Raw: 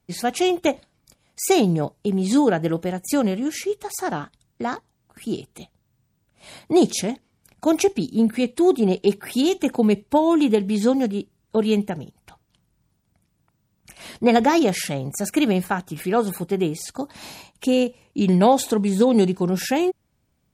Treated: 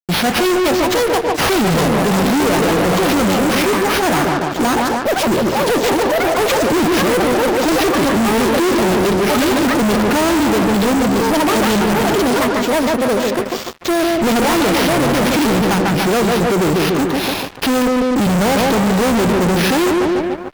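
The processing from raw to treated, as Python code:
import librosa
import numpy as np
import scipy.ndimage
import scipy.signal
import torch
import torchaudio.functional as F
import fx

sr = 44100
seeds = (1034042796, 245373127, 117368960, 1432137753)

y = fx.sample_hold(x, sr, seeds[0], rate_hz=7700.0, jitter_pct=0)
y = fx.echo_pitch(y, sr, ms=646, semitones=5, count=3, db_per_echo=-6.0)
y = fx.echo_bbd(y, sr, ms=146, stages=2048, feedback_pct=52, wet_db=-7)
y = fx.fuzz(y, sr, gain_db=35.0, gate_db=-45.0)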